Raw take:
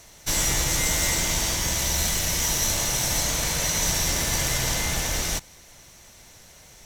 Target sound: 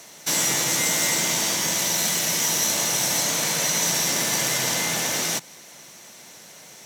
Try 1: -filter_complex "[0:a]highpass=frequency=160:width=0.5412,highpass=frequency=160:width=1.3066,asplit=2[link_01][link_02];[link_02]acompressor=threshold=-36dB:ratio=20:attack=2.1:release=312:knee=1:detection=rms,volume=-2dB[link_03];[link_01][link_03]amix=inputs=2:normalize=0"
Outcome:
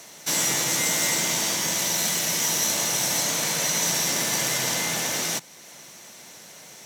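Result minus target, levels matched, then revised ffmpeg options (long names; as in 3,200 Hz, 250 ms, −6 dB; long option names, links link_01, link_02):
downward compressor: peak gain reduction +9 dB
-filter_complex "[0:a]highpass=frequency=160:width=0.5412,highpass=frequency=160:width=1.3066,asplit=2[link_01][link_02];[link_02]acompressor=threshold=-26.5dB:ratio=20:attack=2.1:release=312:knee=1:detection=rms,volume=-2dB[link_03];[link_01][link_03]amix=inputs=2:normalize=0"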